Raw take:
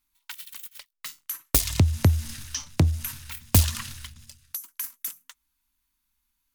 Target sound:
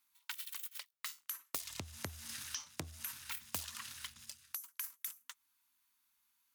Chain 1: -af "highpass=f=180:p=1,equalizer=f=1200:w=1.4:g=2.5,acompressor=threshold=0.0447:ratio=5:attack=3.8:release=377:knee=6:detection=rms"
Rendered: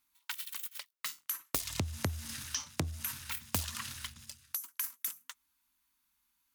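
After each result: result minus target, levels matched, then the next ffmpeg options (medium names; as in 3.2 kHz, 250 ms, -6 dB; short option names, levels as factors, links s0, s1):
compression: peak gain reduction -6 dB; 250 Hz band +5.0 dB
-af "highpass=f=180:p=1,equalizer=f=1200:w=1.4:g=2.5,acompressor=threshold=0.0168:ratio=5:attack=3.8:release=377:knee=6:detection=rms"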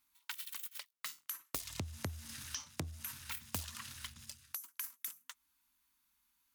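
250 Hz band +4.5 dB
-af "highpass=f=610:p=1,equalizer=f=1200:w=1.4:g=2.5,acompressor=threshold=0.0168:ratio=5:attack=3.8:release=377:knee=6:detection=rms"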